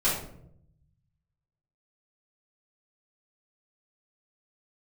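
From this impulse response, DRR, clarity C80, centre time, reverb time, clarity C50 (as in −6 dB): −10.5 dB, 7.5 dB, 46 ms, 0.70 s, 3.5 dB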